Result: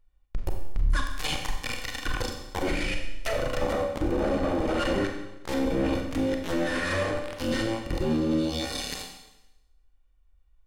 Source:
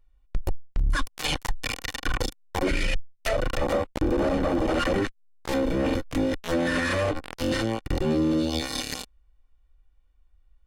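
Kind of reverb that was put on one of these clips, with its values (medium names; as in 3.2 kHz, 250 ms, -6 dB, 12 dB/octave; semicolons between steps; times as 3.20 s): Schroeder reverb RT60 0.94 s, combs from 30 ms, DRR 3 dB; trim -3.5 dB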